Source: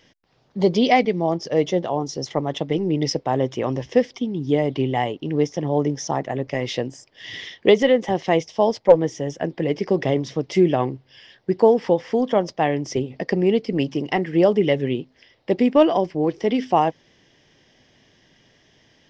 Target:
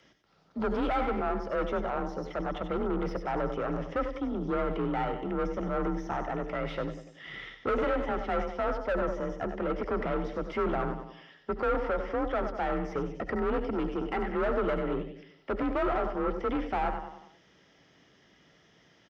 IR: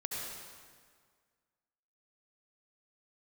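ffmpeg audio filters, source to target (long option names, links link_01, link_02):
-filter_complex "[0:a]aecho=1:1:96|192|288|384|480:0.237|0.109|0.0502|0.0231|0.0106,aeval=exprs='(tanh(15.8*val(0)+0.4)-tanh(0.4))/15.8':channel_layout=same,equalizer=frequency=1300:width=6.7:gain=13,afreqshift=35,asplit=2[link_01][link_02];[1:a]atrim=start_sample=2205,atrim=end_sample=3969[link_03];[link_02][link_03]afir=irnorm=-1:irlink=0,volume=-3.5dB[link_04];[link_01][link_04]amix=inputs=2:normalize=0,acrossover=split=2700[link_05][link_06];[link_06]acompressor=threshold=-60dB:ratio=4:attack=1:release=60[link_07];[link_05][link_07]amix=inputs=2:normalize=0,volume=-6.5dB"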